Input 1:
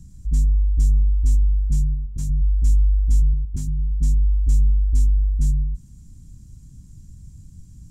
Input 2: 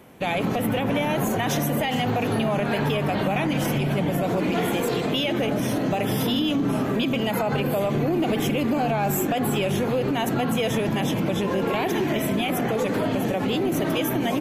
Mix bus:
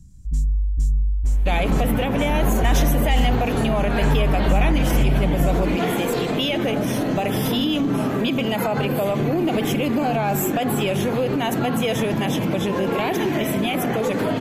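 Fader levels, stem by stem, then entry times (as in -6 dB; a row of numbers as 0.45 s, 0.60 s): -3.0 dB, +2.0 dB; 0.00 s, 1.25 s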